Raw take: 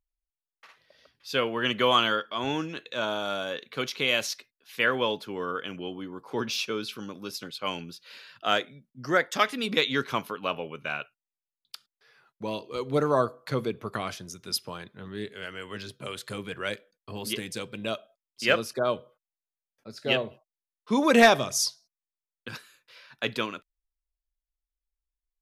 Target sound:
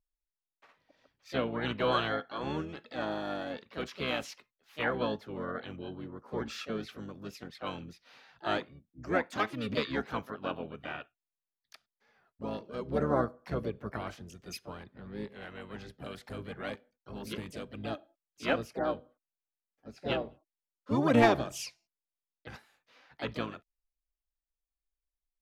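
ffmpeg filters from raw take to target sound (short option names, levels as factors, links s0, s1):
-filter_complex "[0:a]highshelf=f=2400:g=-11,asplit=3[s0][s1][s2];[s1]asetrate=22050,aresample=44100,atempo=2,volume=0.562[s3];[s2]asetrate=55563,aresample=44100,atempo=0.793701,volume=0.447[s4];[s0][s3][s4]amix=inputs=3:normalize=0,volume=0.501"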